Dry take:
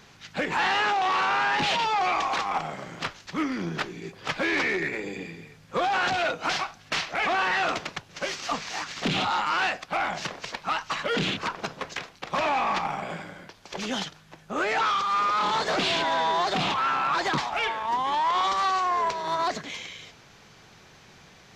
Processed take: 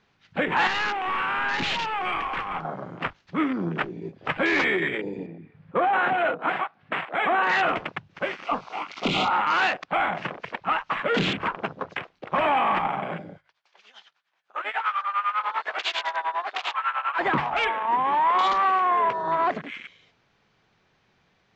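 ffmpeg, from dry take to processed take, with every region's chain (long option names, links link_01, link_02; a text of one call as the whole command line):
ffmpeg -i in.wav -filter_complex "[0:a]asettb=1/sr,asplit=3[link_01][link_02][link_03];[link_01]atrim=end=0.674[link_04];[link_02]atrim=start=0.67:end=2.65,asetpts=PTS-STARTPTS,afade=type=in:duration=0.004:curve=qsin,afade=type=out:start_time=1.976:duration=0.004:curve=qsin,equalizer=frequency=660:width_type=o:width=1.1:gain=-9.5,aeval=exprs='clip(val(0),-1,0.0316)':channel_layout=same[link_05];[link_03]atrim=start=2.646[link_06];[link_04][link_05]acrossfade=duration=0.004:curve1=hsin:curve2=qsin[link_07];[link_07][link_06]acrossfade=duration=0.004:curve1=qsin:curve2=hsin,asettb=1/sr,asplit=3[link_08][link_09][link_10];[link_08]atrim=end=5.264[link_11];[link_09]atrim=start=5.26:end=7.49,asetpts=PTS-STARTPTS,afade=type=in:duration=0.004:curve=qsin,afade=type=out:start_time=2.226:duration=0.004:curve=qsin,highpass=160,lowpass=2200,acompressor=mode=upward:threshold=-38dB:ratio=2.5:attack=3.2:release=140:knee=2.83:detection=peak[link_12];[link_10]atrim=start=7.486[link_13];[link_11][link_12]acrossfade=duration=0.004:curve1=hsin:curve2=qsin[link_14];[link_14][link_13]acrossfade=duration=0.004:curve1=qsin:curve2=hsin,asettb=1/sr,asplit=3[link_15][link_16][link_17];[link_15]atrim=end=8.444[link_18];[link_16]atrim=start=8.44:end=9.31,asetpts=PTS-STARTPTS,afade=type=in:duration=0.004:curve=qsin,afade=type=out:start_time=0.866:duration=0.004:curve=qsin,asuperstop=centerf=1700:order=12:qfactor=3.1,equalizer=frequency=130:width_type=o:width=1.3:gain=-5.5,asplit=2[link_19][link_20];[link_20]adelay=20,volume=-10dB[link_21];[link_19][link_21]amix=inputs=2:normalize=0,atrim=end_sample=38367[link_22];[link_17]atrim=start=9.306[link_23];[link_18][link_22]acrossfade=duration=0.004:curve1=hsin:curve2=qsin[link_24];[link_24][link_23]acrossfade=duration=0.004:curve1=qsin:curve2=hsin,asettb=1/sr,asplit=3[link_25][link_26][link_27];[link_25]atrim=end=13.384[link_28];[link_26]atrim=start=13.38:end=17.19,asetpts=PTS-STARTPTS,afade=type=in:duration=0.004:curve=qsin,afade=type=out:start_time=3.806:duration=0.004:curve=qsin,highpass=940,tremolo=f=10:d=0.82[link_29];[link_27]atrim=start=17.186[link_30];[link_28][link_29]acrossfade=duration=0.004:curve1=hsin:curve2=qsin[link_31];[link_31][link_30]acrossfade=duration=0.004:curve1=qsin:curve2=hsin,lowpass=3900,bandreject=frequency=50:width_type=h:width=6,bandreject=frequency=100:width_type=h:width=6,bandreject=frequency=150:width_type=h:width=6,afwtdn=0.0158,volume=3.5dB" out.wav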